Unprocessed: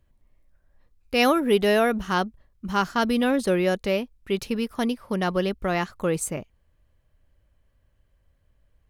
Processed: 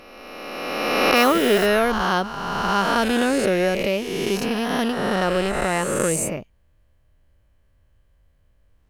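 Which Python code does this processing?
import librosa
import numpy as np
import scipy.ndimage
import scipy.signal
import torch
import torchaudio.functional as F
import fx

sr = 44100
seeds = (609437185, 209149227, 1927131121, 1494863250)

y = fx.spec_swells(x, sr, rise_s=2.19)
y = fx.quant_dither(y, sr, seeds[0], bits=6, dither='triangular', at=(1.15, 1.65), fade=0.02)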